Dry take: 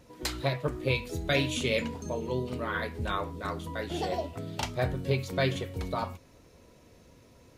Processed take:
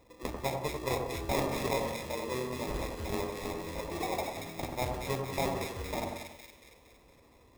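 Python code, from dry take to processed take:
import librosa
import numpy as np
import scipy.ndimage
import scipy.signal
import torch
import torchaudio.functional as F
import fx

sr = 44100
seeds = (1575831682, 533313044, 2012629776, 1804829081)

y = fx.peak_eq(x, sr, hz=160.0, db=-9.0, octaves=1.1)
y = fx.sample_hold(y, sr, seeds[0], rate_hz=1500.0, jitter_pct=0)
y = fx.echo_split(y, sr, split_hz=1600.0, low_ms=92, high_ms=231, feedback_pct=52, wet_db=-4.0)
y = y * librosa.db_to_amplitude(-3.5)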